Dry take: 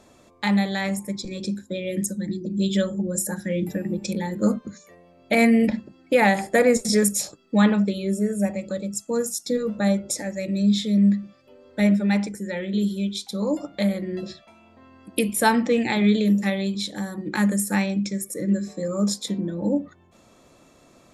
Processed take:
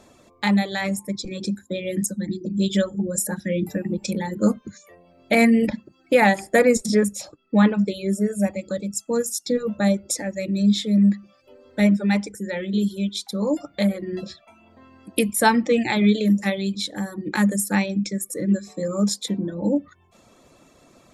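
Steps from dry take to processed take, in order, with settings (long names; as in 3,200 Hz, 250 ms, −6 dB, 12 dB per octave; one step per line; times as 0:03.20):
reverb reduction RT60 0.55 s
0:06.86–0:07.79: low-pass filter 2,400 Hz 6 dB per octave
level +2 dB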